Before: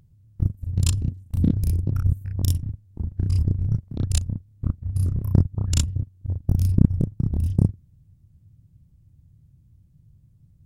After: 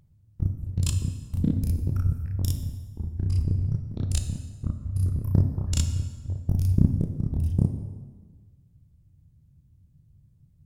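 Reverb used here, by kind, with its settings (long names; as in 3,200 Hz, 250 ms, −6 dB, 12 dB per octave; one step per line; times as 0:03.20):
dense smooth reverb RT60 1.5 s, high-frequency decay 0.75×, DRR 6 dB
level −4 dB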